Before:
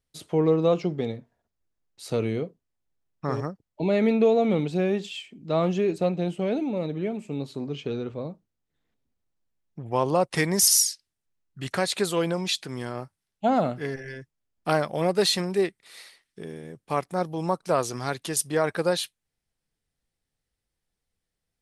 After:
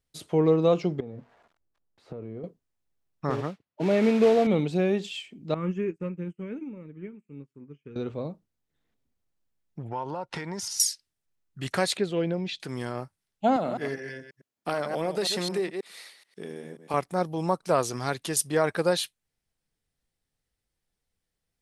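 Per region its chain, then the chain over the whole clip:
1.00–2.44 s: zero-crossing glitches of -32 dBFS + low-pass 1.1 kHz + compression 12:1, threshold -34 dBFS
3.30–4.47 s: modulation noise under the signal 12 dB + band-pass 120–3000 Hz
5.54–7.96 s: treble shelf 4.8 kHz -8.5 dB + static phaser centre 1.7 kHz, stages 4 + upward expansion 2.5:1, over -46 dBFS
9.88–10.80 s: low-pass 5 kHz + compression 16:1, threshold -30 dBFS + small resonant body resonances 910/1400 Hz, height 12 dB, ringing for 35 ms
11.97–12.60 s: low-pass 2.4 kHz + peaking EQ 1.1 kHz -13.5 dB 1 oct
13.56–16.94 s: chunks repeated in reverse 107 ms, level -9.5 dB + high-pass 180 Hz + compression 4:1, threshold -24 dBFS
whole clip: none

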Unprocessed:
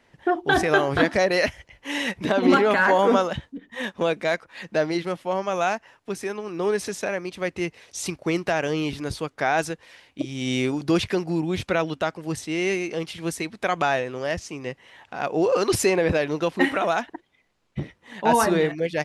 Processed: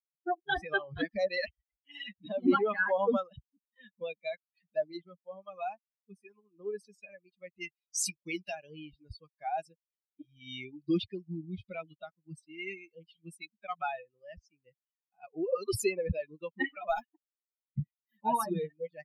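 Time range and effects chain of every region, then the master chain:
7.61–8.55 s: treble shelf 3.1 kHz +10.5 dB + doubling 21 ms -12 dB
16.89–18.17 s: treble shelf 8.8 kHz +9.5 dB + waveshaping leveller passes 1
whole clip: expander on every frequency bin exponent 3; bass shelf 190 Hz +3.5 dB; trim -4.5 dB

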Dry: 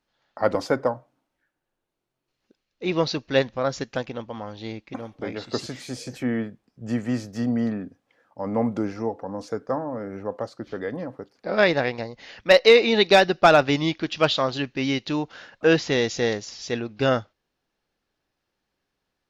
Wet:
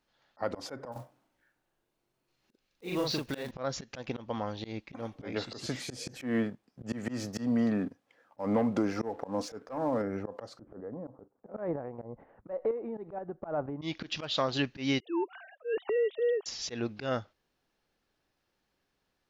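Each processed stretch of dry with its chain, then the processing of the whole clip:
0.92–3.51 s: block-companded coder 5-bit + compression 2.5:1, threshold -32 dBFS + doubling 40 ms -2 dB
6.20–10.02 s: bass shelf 100 Hz -9.5 dB + waveshaping leveller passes 1
10.59–13.82 s: low-pass 1.1 kHz 24 dB/octave + compression 4:1, threshold -27 dBFS + square tremolo 2.1 Hz, depth 60%, duty 45%
15.00–16.46 s: formants replaced by sine waves + peaking EQ 2.1 kHz -11 dB 1.6 oct + transient shaper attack -7 dB, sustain +6 dB
whole clip: compression 6:1, threshold -24 dBFS; slow attack 142 ms

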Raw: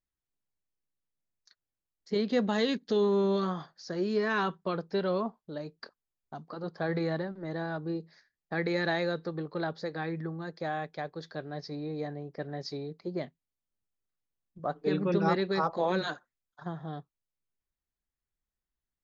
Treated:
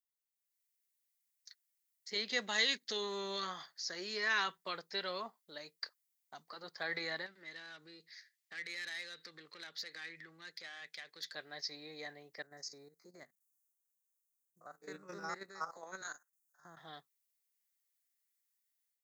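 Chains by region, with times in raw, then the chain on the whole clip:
7.26–11.33 s: compression 5:1, threshold -36 dBFS + overdrive pedal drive 16 dB, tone 2.1 kHz, clips at -25.5 dBFS + peaking EQ 810 Hz -15 dB 1.9 oct
12.42–16.77 s: spectrogram pixelated in time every 50 ms + FFT filter 170 Hz 0 dB, 890 Hz -4 dB, 1.4 kHz +1 dB, 3.2 kHz -24 dB, 6.4 kHz +5 dB + level held to a coarse grid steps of 10 dB
whole clip: differentiator; level rider gain up to 11 dB; peaking EQ 2 kHz +8 dB 0.33 oct; trim -1.5 dB

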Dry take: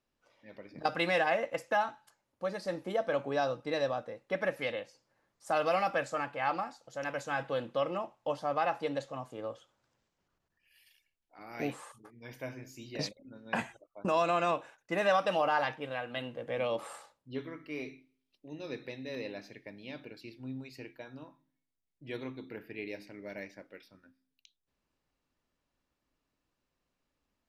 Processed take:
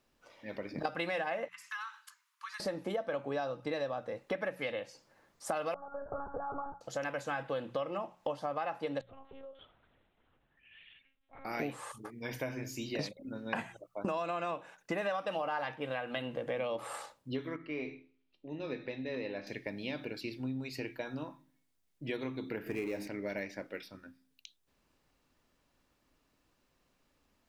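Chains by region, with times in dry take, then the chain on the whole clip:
1.48–2.60 s: steep high-pass 980 Hz 96 dB/octave + compression 3:1, threshold -51 dBFS
5.74–6.81 s: compression 10:1, threshold -41 dBFS + steep low-pass 1.5 kHz 96 dB/octave + monotone LPC vocoder at 8 kHz 280 Hz
9.01–11.45 s: band-stop 1.1 kHz + compression 4:1, threshold -58 dBFS + monotone LPC vocoder at 8 kHz 270 Hz
17.56–19.47 s: low-pass 3.2 kHz + feedback comb 84 Hz, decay 0.37 s
22.66–23.08 s: companding laws mixed up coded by mu + FFT filter 890 Hz 0 dB, 4.4 kHz -9 dB, 6.8 kHz 0 dB
whole clip: hum notches 60/120/180 Hz; dynamic bell 6.3 kHz, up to -5 dB, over -54 dBFS, Q 1; compression 5:1, threshold -43 dBFS; trim +9 dB

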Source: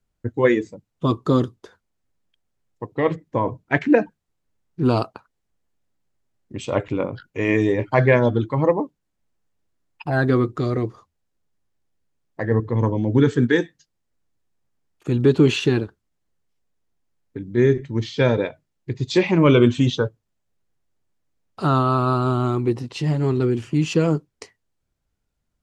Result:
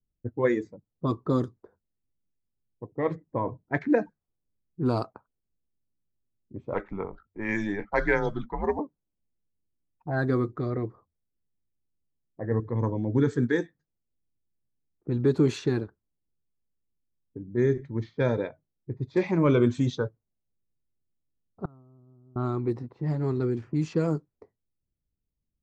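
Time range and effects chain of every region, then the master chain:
6.74–8.79 s: tilt shelf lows -6.5 dB, about 730 Hz + frequency shift -99 Hz
21.65–22.36 s: bass shelf 400 Hz +7.5 dB + inverted gate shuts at -17 dBFS, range -33 dB
whole clip: level-controlled noise filter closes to 360 Hz, open at -13.5 dBFS; peaking EQ 2.9 kHz -14.5 dB 0.43 oct; trim -7 dB

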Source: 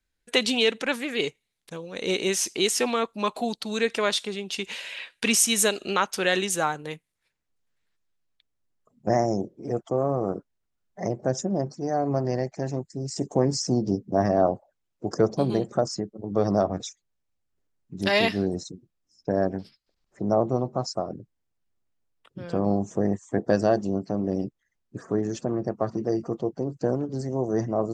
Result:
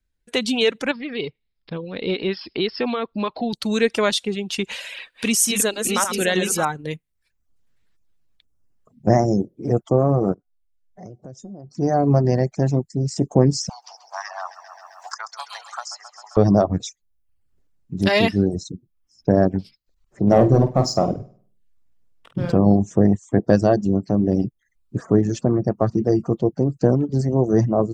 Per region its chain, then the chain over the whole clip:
0.91–3.53 s: compression 1.5:1, threshold -37 dBFS + brick-wall FIR low-pass 5.4 kHz
4.81–6.65 s: backward echo that repeats 308 ms, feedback 47%, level -5 dB + treble shelf 9.3 kHz +8 dB
10.34–11.75 s: dynamic bell 1.8 kHz, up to -7 dB, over -48 dBFS, Q 1.1 + compression 2.5:1, threshold -39 dBFS + feedback comb 740 Hz, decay 0.31 s, mix 70%
13.69–16.37 s: steep high-pass 900 Hz 48 dB/octave + feedback delay 132 ms, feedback 59%, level -11 dB + three bands compressed up and down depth 70%
20.27–22.52 s: hum notches 50/100/150/200/250/300/350/400/450 Hz + waveshaping leveller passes 1 + flutter echo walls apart 8.6 m, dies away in 0.5 s
whole clip: reverb removal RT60 0.55 s; level rider gain up to 9 dB; bass shelf 260 Hz +10.5 dB; trim -3.5 dB

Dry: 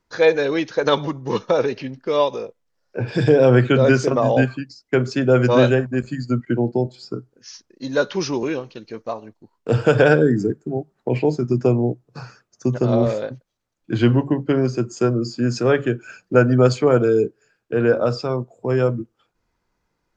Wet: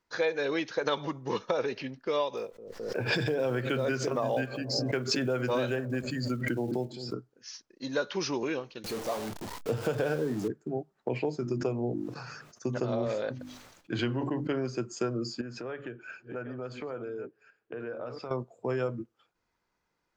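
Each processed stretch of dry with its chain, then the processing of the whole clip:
2.37–7.14 s: block-companded coder 7-bit + feedback echo behind a low-pass 212 ms, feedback 36%, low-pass 400 Hz, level -14 dB + swell ahead of each attack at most 47 dB/s
8.84–10.48 s: jump at every zero crossing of -23.5 dBFS + peaking EQ 2 kHz -7.5 dB 2.4 oct + doubling 28 ms -14 dB
11.41–14.53 s: hum notches 50/100/150/200/250/300/350 Hz + decay stretcher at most 52 dB/s
15.41–18.31 s: chunks repeated in reverse 698 ms, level -13.5 dB + tone controls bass -2 dB, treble -13 dB + compression 5:1, threshold -29 dBFS
whole clip: treble shelf 5.9 kHz -11.5 dB; compression, threshold -19 dBFS; tilt EQ +2 dB/octave; trim -4.5 dB

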